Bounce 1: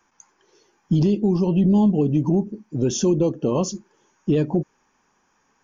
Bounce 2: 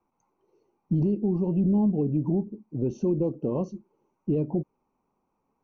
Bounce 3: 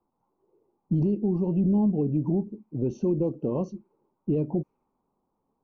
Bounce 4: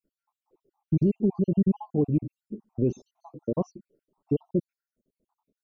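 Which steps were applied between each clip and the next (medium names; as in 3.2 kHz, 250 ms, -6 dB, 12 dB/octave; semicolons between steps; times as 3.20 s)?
boxcar filter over 26 samples; trim -5.5 dB
level-controlled noise filter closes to 1 kHz, open at -23 dBFS
random holes in the spectrogram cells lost 68%; trim +3 dB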